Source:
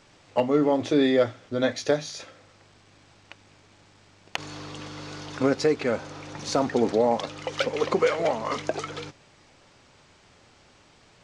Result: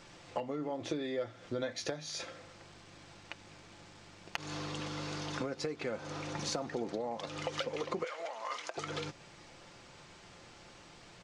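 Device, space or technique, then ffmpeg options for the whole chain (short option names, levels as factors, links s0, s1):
serial compression, peaks first: -filter_complex "[0:a]acompressor=threshold=0.0316:ratio=6,acompressor=threshold=0.00794:ratio=1.5,asettb=1/sr,asplit=3[s0][s1][s2];[s0]atrim=end=8.044[s3];[s1]atrim=start=8.04:end=8.77,asetpts=PTS-STARTPTS,afade=t=in:d=0.004:c=qsin,afade=t=out:st=0.726:d=0.004:c=qsin,highpass=760[s4];[s2]atrim=start=8.766[s5];[s3][s4]acrossfade=d=0.004:c1=hsin:c2=qsin[s6];[s6][s5]acrossfade=d=0.004:c1=qsin:c2=hsin,aecho=1:1:5.8:0.32,volume=1.12"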